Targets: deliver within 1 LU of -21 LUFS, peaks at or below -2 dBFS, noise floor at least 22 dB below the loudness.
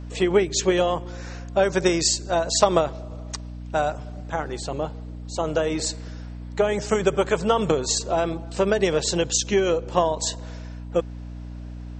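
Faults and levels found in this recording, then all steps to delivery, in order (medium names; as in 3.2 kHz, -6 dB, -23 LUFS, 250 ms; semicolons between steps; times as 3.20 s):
hum 60 Hz; highest harmonic 300 Hz; hum level -33 dBFS; loudness -23.0 LUFS; peak level -4.5 dBFS; loudness target -21.0 LUFS
-> de-hum 60 Hz, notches 5; trim +2 dB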